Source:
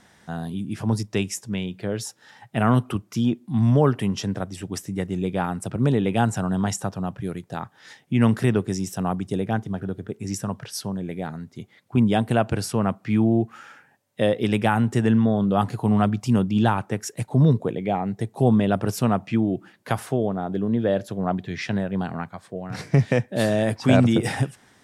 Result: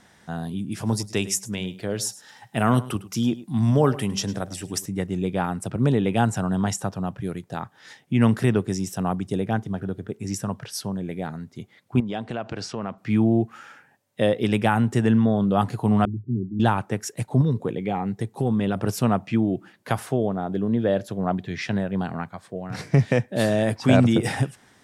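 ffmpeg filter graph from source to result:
ffmpeg -i in.wav -filter_complex "[0:a]asettb=1/sr,asplit=3[link_01][link_02][link_03];[link_01]atrim=end=0.724[link_04];[link_02]atrim=start=0.72:end=4.86,asetpts=PTS-STARTPTS,afade=type=in:duration=0.004:curve=qsin,afade=type=out:start_time=4.136:duration=0.004:curve=qsin,bass=frequency=250:gain=-2,treble=frequency=4000:gain=7,bandreject=frequency=192.9:width_type=h:width=4,bandreject=frequency=385.8:width_type=h:width=4,bandreject=frequency=578.7:width_type=h:width=4,bandreject=frequency=771.6:width_type=h:width=4,aecho=1:1:105:0.133,atrim=end_sample=182574[link_05];[link_03]atrim=start=4.856[link_06];[link_04][link_05]acrossfade=duration=0.004:curve1=hsin:curve2=qsin[link_07];[link_07][link_06]acrossfade=duration=0.004:curve1=qsin:curve2=hsin,asettb=1/sr,asplit=3[link_08][link_09][link_10];[link_08]atrim=end=12.004[link_11];[link_09]atrim=start=12:end=12.98,asetpts=PTS-STARTPTS,afade=type=in:duration=0.004:curve=qsin,afade=type=out:start_time=0.976:duration=0.004:curve=qsin,lowpass=frequency=6300:width=0.5412,lowpass=frequency=6300:width=1.3066,acompressor=threshold=-22dB:ratio=10:attack=3.2:release=140:knee=1:detection=peak,lowshelf=frequency=150:gain=-10.5[link_12];[link_10]atrim=start=12.976[link_13];[link_11][link_12]acrossfade=duration=0.004:curve1=hsin:curve2=qsin[link_14];[link_14][link_13]acrossfade=duration=0.004:curve1=qsin:curve2=hsin,asettb=1/sr,asplit=3[link_15][link_16][link_17];[link_15]atrim=end=16.054[link_18];[link_16]atrim=start=16.05:end=16.6,asetpts=PTS-STARTPTS,afade=type=in:duration=0.004:curve=qsin,afade=type=out:start_time=0.546:duration=0.004:curve=qsin,asuperpass=centerf=200:order=20:qfactor=0.68,equalizer=frequency=200:width_type=o:width=1.3:gain=-8.5[link_19];[link_17]atrim=start=16.596[link_20];[link_18][link_19]acrossfade=duration=0.004:curve1=hsin:curve2=qsin[link_21];[link_21][link_20]acrossfade=duration=0.004:curve1=qsin:curve2=hsin,asettb=1/sr,asplit=3[link_22][link_23][link_24];[link_22]atrim=end=17.414[link_25];[link_23]atrim=start=17.41:end=18.77,asetpts=PTS-STARTPTS,afade=type=in:duration=0.004:curve=qsin,afade=type=out:start_time=1.356:duration=0.004:curve=qsin,bandreject=frequency=640:width=15,acompressor=threshold=-18dB:ratio=5:attack=3.2:release=140:knee=1:detection=peak,equalizer=frequency=640:width_type=o:width=0.23:gain=-6.5[link_26];[link_24]atrim=start=18.766[link_27];[link_25][link_26]acrossfade=duration=0.004:curve1=hsin:curve2=qsin[link_28];[link_28][link_27]acrossfade=duration=0.004:curve1=qsin:curve2=hsin" out.wav

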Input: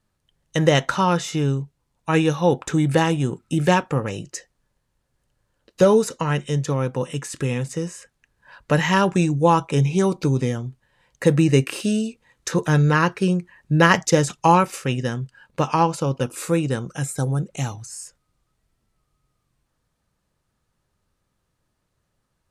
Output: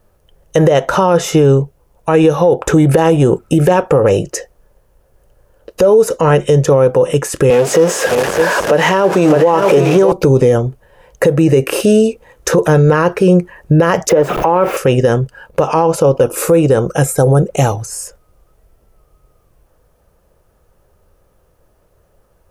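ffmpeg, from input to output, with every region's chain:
ffmpeg -i in.wav -filter_complex "[0:a]asettb=1/sr,asplit=3[link_01][link_02][link_03];[link_01]atrim=end=7.504[link_04];[link_02]atrim=start=7.5:end=10.12,asetpts=PTS-STARTPTS,afade=type=in:duration=0.004:curve=qsin,afade=type=out:start_time=2.616:duration=0.004:curve=qsin,aeval=exprs='val(0)+0.5*0.0668*sgn(val(0))':channel_layout=same,highpass=230,lowpass=7400,aecho=1:1:611:0.316,atrim=end_sample=115542[link_05];[link_03]atrim=start=10.116[link_06];[link_04][link_05]acrossfade=duration=0.004:curve1=hsin:curve2=qsin[link_07];[link_07][link_06]acrossfade=duration=0.004:curve1=qsin:curve2=hsin,asettb=1/sr,asplit=3[link_08][link_09][link_10];[link_08]atrim=end=14.094[link_11];[link_09]atrim=start=14.09:end=14.77,asetpts=PTS-STARTPTS,afade=type=in:duration=0.004:curve=qsin,afade=type=out:start_time=0.676:duration=0.004:curve=qsin,aeval=exprs='val(0)+0.5*0.0841*sgn(val(0))':channel_layout=same,acrossover=split=170 2900:gain=0.2 1 0.0891[link_12][link_13][link_14];[link_12][link_13][link_14]amix=inputs=3:normalize=0[link_15];[link_10]atrim=start=14.766[link_16];[link_11][link_15]acrossfade=duration=0.004:curve1=hsin:curve2=qsin[link_17];[link_17][link_16]acrossfade=duration=0.004:curve1=qsin:curve2=hsin,equalizer=frequency=125:width_type=o:width=1:gain=-8,equalizer=frequency=250:width_type=o:width=1:gain=-10,equalizer=frequency=500:width_type=o:width=1:gain=6,equalizer=frequency=1000:width_type=o:width=1:gain=-5,equalizer=frequency=2000:width_type=o:width=1:gain=-8,equalizer=frequency=4000:width_type=o:width=1:gain=-12,equalizer=frequency=8000:width_type=o:width=1:gain=-10,acompressor=threshold=-22dB:ratio=6,alimiter=level_in=23dB:limit=-1dB:release=50:level=0:latency=1,volume=-1dB" out.wav

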